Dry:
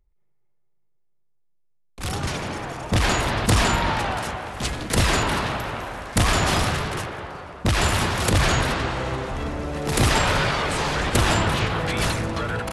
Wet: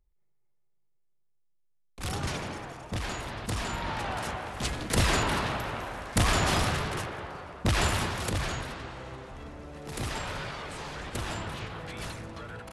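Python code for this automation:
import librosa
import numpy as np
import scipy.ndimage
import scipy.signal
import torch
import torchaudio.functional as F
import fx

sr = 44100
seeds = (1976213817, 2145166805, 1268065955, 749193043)

y = fx.gain(x, sr, db=fx.line((2.35, -5.5), (3.05, -14.0), (3.64, -14.0), (4.29, -5.0), (7.8, -5.0), (8.69, -15.0)))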